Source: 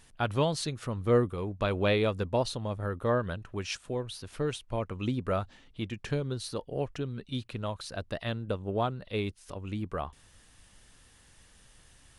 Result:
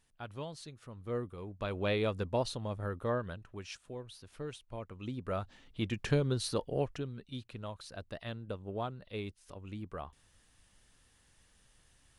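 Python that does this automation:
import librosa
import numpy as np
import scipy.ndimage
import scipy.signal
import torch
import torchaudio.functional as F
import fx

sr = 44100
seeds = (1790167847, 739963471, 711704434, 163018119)

y = fx.gain(x, sr, db=fx.line((0.86, -15.0), (2.11, -4.0), (2.88, -4.0), (3.73, -10.5), (5.01, -10.5), (5.94, 2.0), (6.67, 2.0), (7.23, -8.0)))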